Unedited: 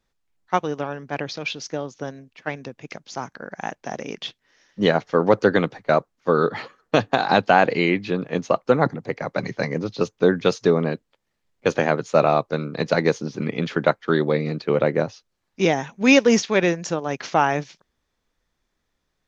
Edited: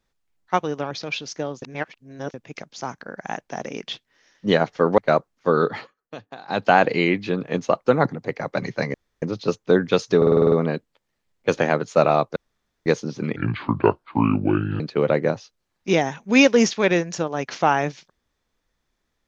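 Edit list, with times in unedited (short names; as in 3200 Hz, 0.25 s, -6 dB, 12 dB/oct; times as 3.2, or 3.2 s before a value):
0.91–1.25 cut
1.96–2.68 reverse
5.32–5.79 cut
6.54–7.49 dip -19 dB, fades 0.21 s
9.75 insert room tone 0.28 s
10.7 stutter 0.05 s, 8 plays
12.54–13.04 room tone
13.54–14.52 speed 68%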